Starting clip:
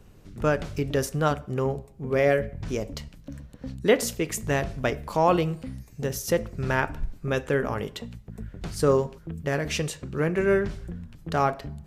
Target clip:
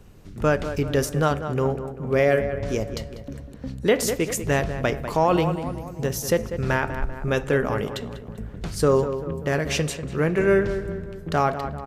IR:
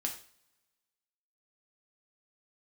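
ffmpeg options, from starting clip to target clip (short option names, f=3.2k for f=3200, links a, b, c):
-filter_complex "[0:a]asplit=2[a][b];[b]adelay=195,lowpass=f=2.3k:p=1,volume=-10.5dB,asplit=2[c][d];[d]adelay=195,lowpass=f=2.3k:p=1,volume=0.54,asplit=2[e][f];[f]adelay=195,lowpass=f=2.3k:p=1,volume=0.54,asplit=2[g][h];[h]adelay=195,lowpass=f=2.3k:p=1,volume=0.54,asplit=2[i][j];[j]adelay=195,lowpass=f=2.3k:p=1,volume=0.54,asplit=2[k][l];[l]adelay=195,lowpass=f=2.3k:p=1,volume=0.54[m];[c][e][g][i][k][m]amix=inputs=6:normalize=0[n];[a][n]amix=inputs=2:normalize=0,alimiter=level_in=11.5dB:limit=-1dB:release=50:level=0:latency=1,volume=-8.5dB"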